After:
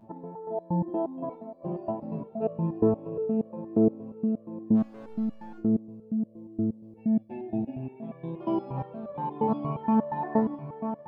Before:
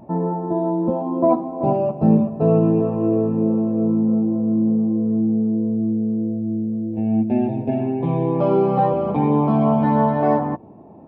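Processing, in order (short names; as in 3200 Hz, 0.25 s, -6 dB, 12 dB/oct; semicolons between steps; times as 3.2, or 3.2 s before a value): diffused feedback echo 0.545 s, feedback 62%, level -10 dB; 4.75–5.58 hard clip -23 dBFS, distortion -19 dB; stepped resonator 8.5 Hz 110–570 Hz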